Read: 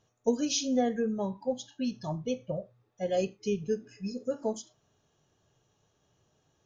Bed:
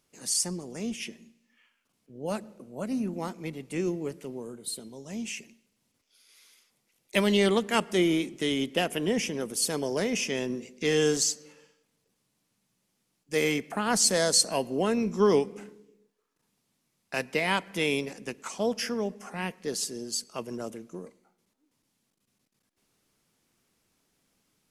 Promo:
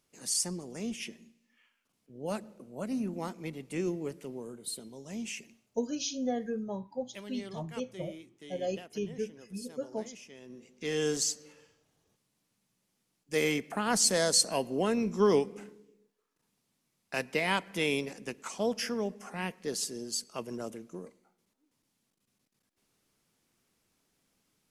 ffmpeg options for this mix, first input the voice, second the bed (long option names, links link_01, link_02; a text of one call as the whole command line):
ffmpeg -i stem1.wav -i stem2.wav -filter_complex "[0:a]adelay=5500,volume=-5dB[link_01];[1:a]volume=15.5dB,afade=type=out:start_time=5.59:duration=0.55:silence=0.125893,afade=type=in:start_time=10.41:duration=1.03:silence=0.11885[link_02];[link_01][link_02]amix=inputs=2:normalize=0" out.wav